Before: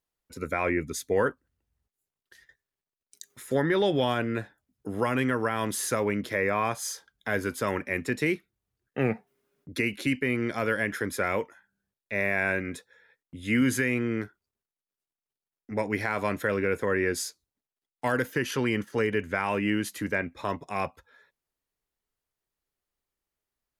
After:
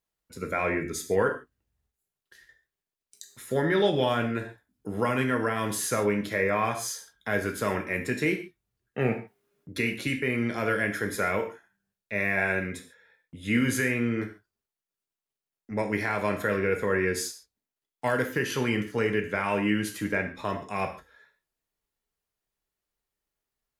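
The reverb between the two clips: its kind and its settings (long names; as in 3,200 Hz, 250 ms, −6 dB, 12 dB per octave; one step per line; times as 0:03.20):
reverb whose tail is shaped and stops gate 170 ms falling, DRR 3.5 dB
level −1 dB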